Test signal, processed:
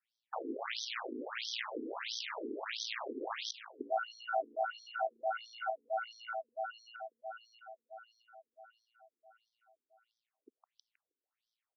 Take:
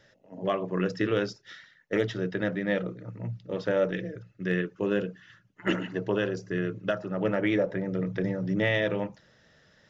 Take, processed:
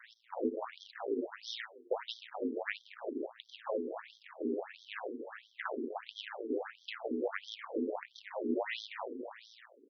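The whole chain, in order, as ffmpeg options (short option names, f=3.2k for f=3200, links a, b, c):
-filter_complex "[0:a]highpass=f=49:w=0.5412,highpass=f=49:w=1.3066,aecho=1:1:158|316|474|632:0.15|0.0703|0.0331|0.0155,aeval=exprs='max(val(0),0)':c=same,acrossover=split=150[a][b];[b]acompressor=threshold=-42dB:ratio=6[c];[a][c]amix=inputs=2:normalize=0,aeval=exprs='val(0)*sin(2*PI*57*n/s)':c=same,asplit=2[d][e];[e]aeval=exprs='clip(val(0),-1,0.0106)':c=same,volume=-4dB[f];[d][f]amix=inputs=2:normalize=0,afftfilt=real='re*between(b*sr/1024,320*pow(4500/320,0.5+0.5*sin(2*PI*1.5*pts/sr))/1.41,320*pow(4500/320,0.5+0.5*sin(2*PI*1.5*pts/sr))*1.41)':imag='im*between(b*sr/1024,320*pow(4500/320,0.5+0.5*sin(2*PI*1.5*pts/sr))/1.41,320*pow(4500/320,0.5+0.5*sin(2*PI*1.5*pts/sr))*1.41)':win_size=1024:overlap=0.75,volume=13dB"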